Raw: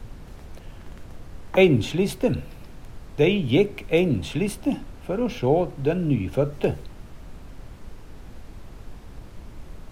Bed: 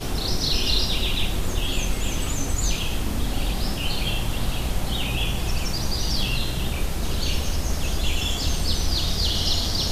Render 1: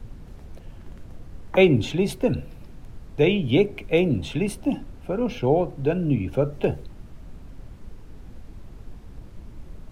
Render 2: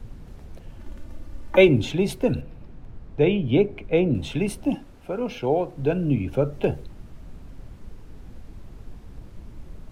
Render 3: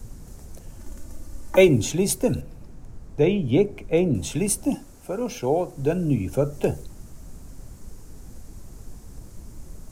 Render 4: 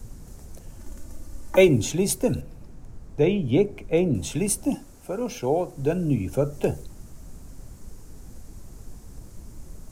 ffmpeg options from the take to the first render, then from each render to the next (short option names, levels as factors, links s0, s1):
-af "afftdn=nr=6:nf=-43"
-filter_complex "[0:a]asettb=1/sr,asplit=3[s0][s1][s2];[s0]atrim=end=0.794[s3];[s1]atrim=start=0.79:end=1.69,asetpts=PTS-STARTPTS,afade=t=in:d=0.004:c=qsin,afade=t=out:st=0.896:d=0.004:c=qsin,aecho=1:1:3.4:0.65,atrim=end_sample=39690[s4];[s2]atrim=start=1.686[s5];[s3][s4]acrossfade=d=0.004:c1=hsin:c2=qsin[s6];[s6][s5]acrossfade=d=0.004:c1=qsin:c2=hsin,asettb=1/sr,asplit=3[s7][s8][s9];[s7]atrim=end=2.414[s10];[s8]atrim=start=2.41:end=4.15,asetpts=PTS-STARTPTS,afade=t=in:d=0.004:c=qsin,afade=t=out:st=1.736:d=0.004:c=qsin,lowpass=f=1900:p=1[s11];[s9]atrim=start=4.146[s12];[s10][s11]acrossfade=d=0.004:c1=hsin:c2=qsin[s13];[s13][s12]acrossfade=d=0.004:c1=qsin:c2=hsin,asettb=1/sr,asplit=3[s14][s15][s16];[s14]atrim=end=4.754[s17];[s15]atrim=start=4.75:end=5.76,asetpts=PTS-STARTPTS,afade=t=in:d=0.004:c=qsin,afade=t=out:st=1.006:d=0.004:c=qsin,lowshelf=f=230:g=-9[s18];[s16]atrim=start=5.756[s19];[s17][s18]acrossfade=d=0.004:c1=hsin:c2=qsin[s20];[s20][s19]acrossfade=d=0.004:c1=qsin:c2=hsin"
-af "highshelf=f=4800:t=q:w=1.5:g=13"
-af "volume=0.891"